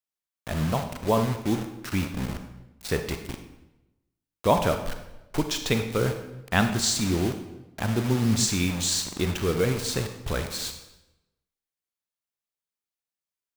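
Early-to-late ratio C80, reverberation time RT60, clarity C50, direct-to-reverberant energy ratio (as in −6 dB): 10.5 dB, 0.95 s, 8.0 dB, 6.5 dB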